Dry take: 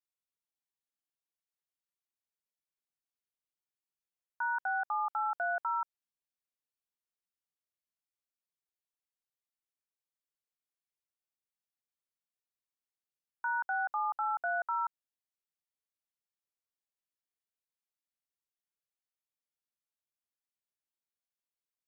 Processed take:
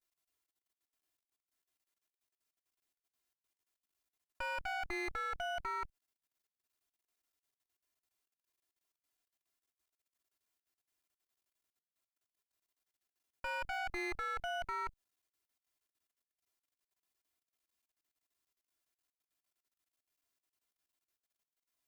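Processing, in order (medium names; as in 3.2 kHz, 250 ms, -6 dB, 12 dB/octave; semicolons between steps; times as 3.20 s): comb filter that takes the minimum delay 2.9 ms; level held to a coarse grid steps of 24 dB; trim +9.5 dB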